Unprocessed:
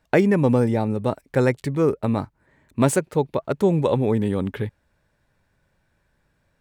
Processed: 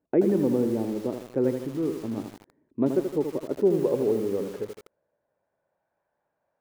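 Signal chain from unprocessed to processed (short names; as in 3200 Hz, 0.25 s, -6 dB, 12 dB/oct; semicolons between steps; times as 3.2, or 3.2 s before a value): 1.58–2.18 dynamic EQ 470 Hz, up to -7 dB, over -31 dBFS, Q 0.85; band-pass sweep 330 Hz -> 710 Hz, 3.48–5.89; lo-fi delay 80 ms, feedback 55%, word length 7-bit, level -6.5 dB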